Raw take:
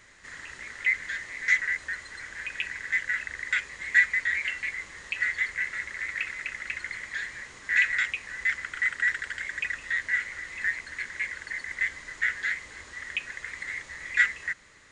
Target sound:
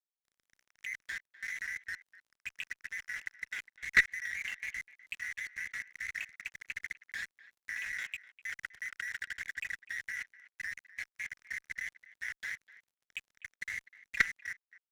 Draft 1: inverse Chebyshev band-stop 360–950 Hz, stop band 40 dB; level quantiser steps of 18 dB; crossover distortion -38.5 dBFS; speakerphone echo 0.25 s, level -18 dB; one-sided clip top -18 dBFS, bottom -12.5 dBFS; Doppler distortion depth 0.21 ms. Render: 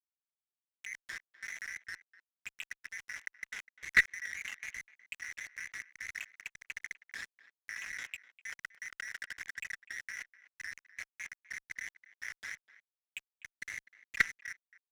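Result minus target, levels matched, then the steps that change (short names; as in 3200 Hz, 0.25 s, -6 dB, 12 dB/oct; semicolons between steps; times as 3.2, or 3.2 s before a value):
crossover distortion: distortion +6 dB
change: crossover distortion -45.5 dBFS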